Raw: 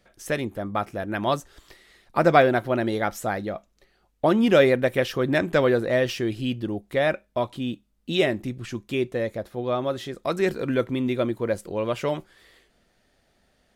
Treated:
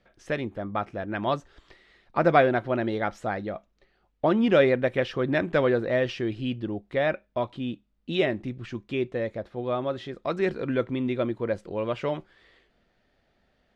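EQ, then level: low-pass 3.7 kHz 12 dB/octave; -2.5 dB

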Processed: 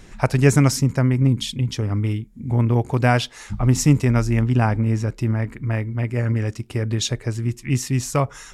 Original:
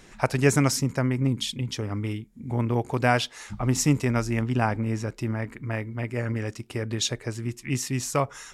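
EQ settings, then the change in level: bass shelf 160 Hz +10.5 dB; +2.0 dB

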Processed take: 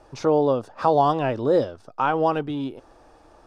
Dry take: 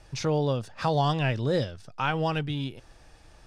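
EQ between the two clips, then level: high-order bell 570 Hz +13 dB 2.8 oct; -5.0 dB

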